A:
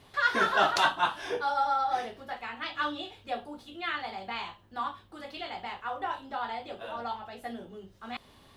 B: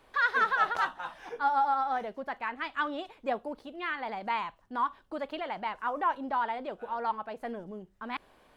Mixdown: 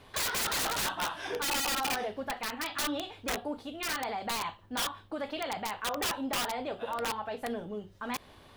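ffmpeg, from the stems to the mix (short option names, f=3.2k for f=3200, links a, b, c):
-filter_complex "[0:a]asoftclip=type=hard:threshold=-24.5dB,volume=-0.5dB[a];[1:a]lowpass=f=4.1k:w=0.5412,lowpass=f=4.1k:w=1.3066,highshelf=f=3.2k:g=3.5,volume=1.5dB[b];[a][b]amix=inputs=2:normalize=0,equalizer=f=92:t=o:w=0.39:g=4,aeval=exprs='(mod(13.3*val(0)+1,2)-1)/13.3':c=same,alimiter=level_in=2dB:limit=-24dB:level=0:latency=1:release=48,volume=-2dB"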